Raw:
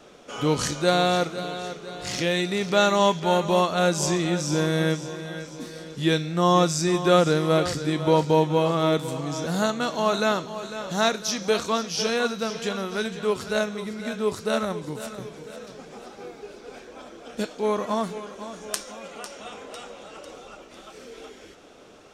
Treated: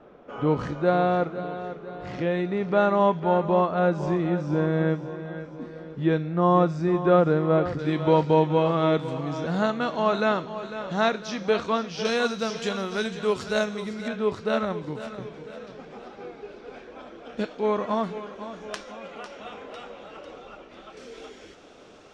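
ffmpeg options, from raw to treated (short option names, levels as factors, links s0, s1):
-af "asetnsamples=n=441:p=0,asendcmd='7.79 lowpass f 2800;12.05 lowpass f 7100;14.08 lowpass f 3200;20.97 lowpass f 6800',lowpass=1400"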